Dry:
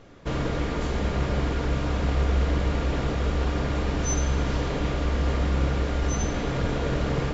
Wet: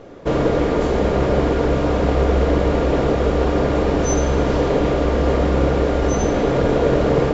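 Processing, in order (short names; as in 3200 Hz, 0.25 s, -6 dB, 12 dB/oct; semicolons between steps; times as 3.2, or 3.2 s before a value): bell 480 Hz +11.5 dB 2.1 oct; gain +3 dB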